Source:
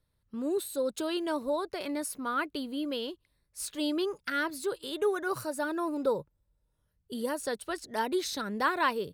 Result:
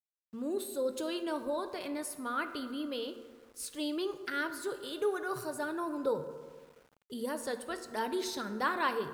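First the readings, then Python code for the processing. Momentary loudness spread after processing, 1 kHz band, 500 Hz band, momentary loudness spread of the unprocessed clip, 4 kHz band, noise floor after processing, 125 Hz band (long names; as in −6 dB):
9 LU, −3.5 dB, −3.0 dB, 7 LU, −4.0 dB, −73 dBFS, −2.5 dB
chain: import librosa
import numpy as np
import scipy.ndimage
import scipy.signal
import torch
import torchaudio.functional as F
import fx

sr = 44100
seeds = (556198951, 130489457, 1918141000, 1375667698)

y = fx.rev_fdn(x, sr, rt60_s=1.8, lf_ratio=0.95, hf_ratio=0.45, size_ms=39.0, drr_db=7.5)
y = np.where(np.abs(y) >= 10.0 ** (-54.0 / 20.0), y, 0.0)
y = F.gain(torch.from_numpy(y), -4.0).numpy()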